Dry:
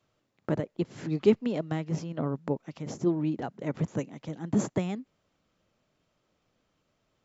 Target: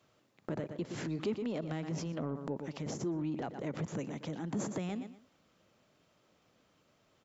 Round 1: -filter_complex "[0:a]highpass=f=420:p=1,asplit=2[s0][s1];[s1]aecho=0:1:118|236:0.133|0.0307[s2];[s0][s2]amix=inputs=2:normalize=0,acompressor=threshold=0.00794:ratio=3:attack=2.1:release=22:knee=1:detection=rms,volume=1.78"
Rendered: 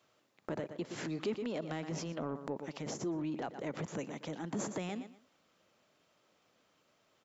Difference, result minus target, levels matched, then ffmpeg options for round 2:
125 Hz band -3.0 dB
-filter_complex "[0:a]highpass=f=110:p=1,asplit=2[s0][s1];[s1]aecho=0:1:118|236:0.133|0.0307[s2];[s0][s2]amix=inputs=2:normalize=0,acompressor=threshold=0.00794:ratio=3:attack=2.1:release=22:knee=1:detection=rms,volume=1.78"

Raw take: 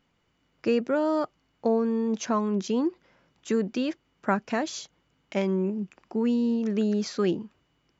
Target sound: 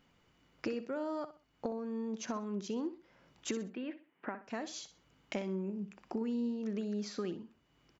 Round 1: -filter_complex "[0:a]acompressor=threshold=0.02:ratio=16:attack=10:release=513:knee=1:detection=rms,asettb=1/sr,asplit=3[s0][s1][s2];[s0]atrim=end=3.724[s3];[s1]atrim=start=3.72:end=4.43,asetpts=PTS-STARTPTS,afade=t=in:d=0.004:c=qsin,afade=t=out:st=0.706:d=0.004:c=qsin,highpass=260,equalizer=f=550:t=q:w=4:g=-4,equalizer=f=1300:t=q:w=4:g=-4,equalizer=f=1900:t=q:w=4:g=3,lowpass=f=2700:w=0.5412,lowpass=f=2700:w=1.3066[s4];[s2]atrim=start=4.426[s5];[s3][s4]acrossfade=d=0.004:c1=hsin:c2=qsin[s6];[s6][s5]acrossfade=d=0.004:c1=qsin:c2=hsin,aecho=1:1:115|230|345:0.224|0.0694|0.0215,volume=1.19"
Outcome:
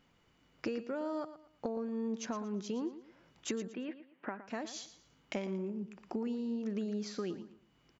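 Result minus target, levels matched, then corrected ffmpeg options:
echo 52 ms late
-filter_complex "[0:a]acompressor=threshold=0.02:ratio=16:attack=10:release=513:knee=1:detection=rms,asettb=1/sr,asplit=3[s0][s1][s2];[s0]atrim=end=3.724[s3];[s1]atrim=start=3.72:end=4.43,asetpts=PTS-STARTPTS,afade=t=in:d=0.004:c=qsin,afade=t=out:st=0.706:d=0.004:c=qsin,highpass=260,equalizer=f=550:t=q:w=4:g=-4,equalizer=f=1300:t=q:w=4:g=-4,equalizer=f=1900:t=q:w=4:g=3,lowpass=f=2700:w=0.5412,lowpass=f=2700:w=1.3066[s4];[s2]atrim=start=4.426[s5];[s3][s4]acrossfade=d=0.004:c1=hsin:c2=qsin[s6];[s6][s5]acrossfade=d=0.004:c1=qsin:c2=hsin,aecho=1:1:63|126|189:0.224|0.0694|0.0215,volume=1.19"

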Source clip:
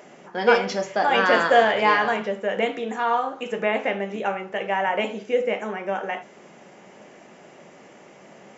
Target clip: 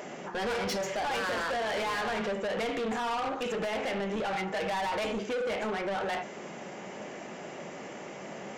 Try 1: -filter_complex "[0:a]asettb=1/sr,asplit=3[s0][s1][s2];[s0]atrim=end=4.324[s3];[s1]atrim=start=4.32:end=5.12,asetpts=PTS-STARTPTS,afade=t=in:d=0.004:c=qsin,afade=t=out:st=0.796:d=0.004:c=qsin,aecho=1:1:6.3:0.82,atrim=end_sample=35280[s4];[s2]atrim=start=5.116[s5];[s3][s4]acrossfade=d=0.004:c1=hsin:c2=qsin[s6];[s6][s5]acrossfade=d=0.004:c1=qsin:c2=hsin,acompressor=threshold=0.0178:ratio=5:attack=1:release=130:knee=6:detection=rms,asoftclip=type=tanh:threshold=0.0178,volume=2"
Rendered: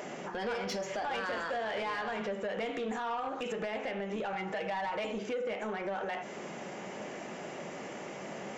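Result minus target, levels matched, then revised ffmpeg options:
compression: peak gain reduction +9 dB
-filter_complex "[0:a]asettb=1/sr,asplit=3[s0][s1][s2];[s0]atrim=end=4.324[s3];[s1]atrim=start=4.32:end=5.12,asetpts=PTS-STARTPTS,afade=t=in:d=0.004:c=qsin,afade=t=out:st=0.796:d=0.004:c=qsin,aecho=1:1:6.3:0.82,atrim=end_sample=35280[s4];[s2]atrim=start=5.116[s5];[s3][s4]acrossfade=d=0.004:c1=hsin:c2=qsin[s6];[s6][s5]acrossfade=d=0.004:c1=qsin:c2=hsin,acompressor=threshold=0.0668:ratio=5:attack=1:release=130:knee=6:detection=rms,asoftclip=type=tanh:threshold=0.0178,volume=2"

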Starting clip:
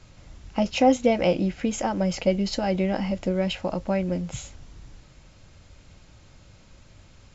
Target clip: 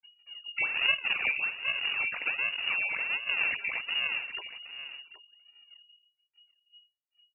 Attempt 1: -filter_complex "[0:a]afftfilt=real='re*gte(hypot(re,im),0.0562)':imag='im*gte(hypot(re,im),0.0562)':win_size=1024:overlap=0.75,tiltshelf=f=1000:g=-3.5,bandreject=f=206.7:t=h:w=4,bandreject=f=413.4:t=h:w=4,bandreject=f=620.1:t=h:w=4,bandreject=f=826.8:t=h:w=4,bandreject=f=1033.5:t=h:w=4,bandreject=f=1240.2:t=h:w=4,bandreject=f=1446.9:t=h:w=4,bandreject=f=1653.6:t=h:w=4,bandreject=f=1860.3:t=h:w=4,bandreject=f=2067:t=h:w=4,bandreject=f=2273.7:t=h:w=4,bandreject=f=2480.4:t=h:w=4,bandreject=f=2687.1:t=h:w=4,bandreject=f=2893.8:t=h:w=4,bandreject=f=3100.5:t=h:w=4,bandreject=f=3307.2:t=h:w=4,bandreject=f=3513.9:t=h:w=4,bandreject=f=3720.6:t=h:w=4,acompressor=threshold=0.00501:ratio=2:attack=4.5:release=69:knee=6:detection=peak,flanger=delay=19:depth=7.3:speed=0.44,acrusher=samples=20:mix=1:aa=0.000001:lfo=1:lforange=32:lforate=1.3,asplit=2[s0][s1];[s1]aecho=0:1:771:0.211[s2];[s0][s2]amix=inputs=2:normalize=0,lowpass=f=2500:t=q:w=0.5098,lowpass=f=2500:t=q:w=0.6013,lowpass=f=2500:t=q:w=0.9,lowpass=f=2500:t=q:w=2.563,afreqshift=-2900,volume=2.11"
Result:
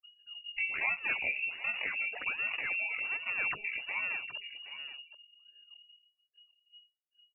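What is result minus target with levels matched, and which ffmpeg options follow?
decimation with a swept rate: distortion -7 dB; compression: peak gain reduction +4 dB
-filter_complex "[0:a]afftfilt=real='re*gte(hypot(re,im),0.0562)':imag='im*gte(hypot(re,im),0.0562)':win_size=1024:overlap=0.75,tiltshelf=f=1000:g=-3.5,bandreject=f=206.7:t=h:w=4,bandreject=f=413.4:t=h:w=4,bandreject=f=620.1:t=h:w=4,bandreject=f=826.8:t=h:w=4,bandreject=f=1033.5:t=h:w=4,bandreject=f=1240.2:t=h:w=4,bandreject=f=1446.9:t=h:w=4,bandreject=f=1653.6:t=h:w=4,bandreject=f=1860.3:t=h:w=4,bandreject=f=2067:t=h:w=4,bandreject=f=2273.7:t=h:w=4,bandreject=f=2480.4:t=h:w=4,bandreject=f=2687.1:t=h:w=4,bandreject=f=2893.8:t=h:w=4,bandreject=f=3100.5:t=h:w=4,bandreject=f=3307.2:t=h:w=4,bandreject=f=3513.9:t=h:w=4,bandreject=f=3720.6:t=h:w=4,acompressor=threshold=0.0126:ratio=2:attack=4.5:release=69:knee=6:detection=peak,flanger=delay=19:depth=7.3:speed=0.44,acrusher=samples=49:mix=1:aa=0.000001:lfo=1:lforange=78.4:lforate=1.3,asplit=2[s0][s1];[s1]aecho=0:1:771:0.211[s2];[s0][s2]amix=inputs=2:normalize=0,lowpass=f=2500:t=q:w=0.5098,lowpass=f=2500:t=q:w=0.6013,lowpass=f=2500:t=q:w=0.9,lowpass=f=2500:t=q:w=2.563,afreqshift=-2900,volume=2.11"

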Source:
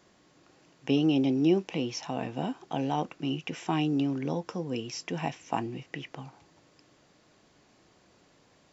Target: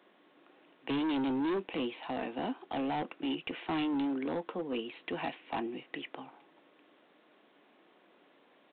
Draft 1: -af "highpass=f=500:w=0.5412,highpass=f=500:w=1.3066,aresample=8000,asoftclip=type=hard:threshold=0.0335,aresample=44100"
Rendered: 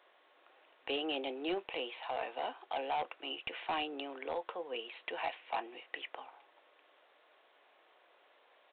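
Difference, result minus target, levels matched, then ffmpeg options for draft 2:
250 Hz band -9.0 dB
-af "highpass=f=240:w=0.5412,highpass=f=240:w=1.3066,aresample=8000,asoftclip=type=hard:threshold=0.0335,aresample=44100"

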